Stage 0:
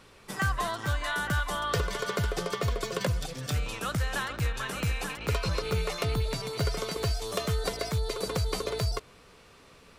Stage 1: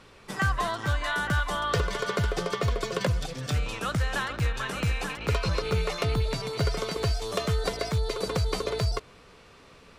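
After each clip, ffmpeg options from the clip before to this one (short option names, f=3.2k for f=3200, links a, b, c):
-af "highshelf=f=10k:g=-11.5,volume=2.5dB"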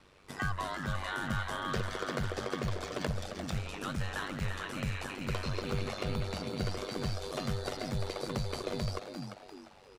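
-filter_complex "[0:a]asplit=5[a][b][c][d][e];[b]adelay=347,afreqshift=120,volume=-7.5dB[f];[c]adelay=694,afreqshift=240,volume=-16.1dB[g];[d]adelay=1041,afreqshift=360,volume=-24.8dB[h];[e]adelay=1388,afreqshift=480,volume=-33.4dB[i];[a][f][g][h][i]amix=inputs=5:normalize=0,aeval=exprs='val(0)*sin(2*PI*48*n/s)':c=same,volume=-5.5dB"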